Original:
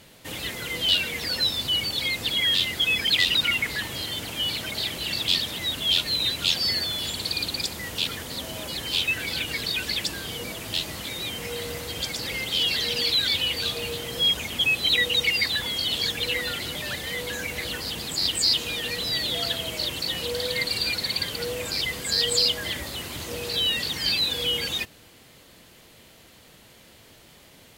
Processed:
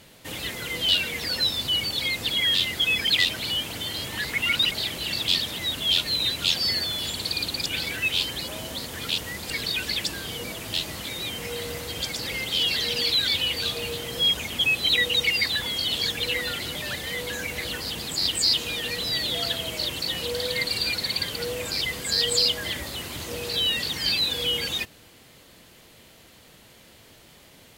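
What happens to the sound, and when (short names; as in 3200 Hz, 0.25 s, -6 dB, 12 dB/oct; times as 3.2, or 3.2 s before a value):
3.29–4.71 reverse
7.66–9.5 reverse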